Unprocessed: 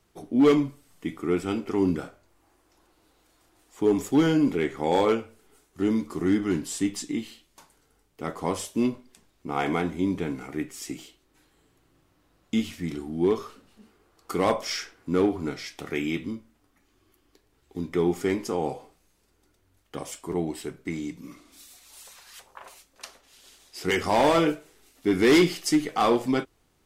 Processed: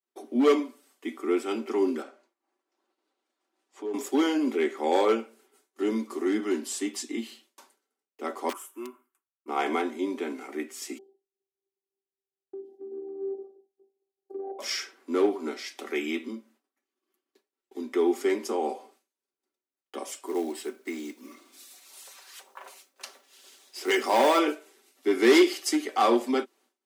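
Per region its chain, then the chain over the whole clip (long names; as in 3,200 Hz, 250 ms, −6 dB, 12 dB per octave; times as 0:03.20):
0:02.02–0:03.94: downward compressor 2 to 1, threshold −38 dBFS + high-frequency loss of the air 54 metres
0:08.49–0:09.48: drawn EQ curve 140 Hz 0 dB, 220 Hz −27 dB, 320 Hz −5 dB, 490 Hz −26 dB, 1,300 Hz +4 dB, 1,800 Hz −10 dB, 2,800 Hz −11 dB, 4,300 Hz −27 dB, 7,500 Hz −10 dB, 13,000 Hz +2 dB + wrap-around overflow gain 28 dB
0:10.98–0:14.59: elliptic low-pass filter 660 Hz + downward compressor 5 to 1, threshold −31 dBFS + phases set to zero 390 Hz
0:20.26–0:24.39: high-pass filter 140 Hz + log-companded quantiser 6 bits
whole clip: Butterworth high-pass 230 Hz 96 dB per octave; downward expander −55 dBFS; comb filter 5.2 ms, depth 45%; level −1 dB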